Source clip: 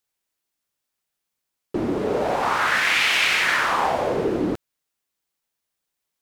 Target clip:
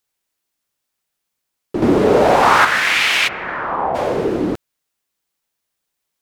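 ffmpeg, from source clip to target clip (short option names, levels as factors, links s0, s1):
-filter_complex "[0:a]asettb=1/sr,asplit=3[s0][s1][s2];[s0]atrim=end=1.824[s3];[s1]atrim=start=1.82:end=2.65,asetpts=PTS-STARTPTS,afade=t=in:d=0.004:c=qsin,afade=t=out:st=0.826:d=0.004:c=qsin,acontrast=83[s4];[s2]atrim=start=2.646[s5];[s3][s4]acrossfade=d=0.004:c1=hsin:c2=qsin[s6];[s6][s5]acrossfade=d=0.004:c1=qsin:c2=hsin,asplit=3[s7][s8][s9];[s7]afade=t=out:st=3.27:d=0.02[s10];[s8]lowpass=1000,afade=t=in:st=3.27:d=0.02,afade=t=out:st=3.94:d=0.02[s11];[s9]afade=t=in:st=3.94:d=0.02[s12];[s10][s11][s12]amix=inputs=3:normalize=0,volume=1.58"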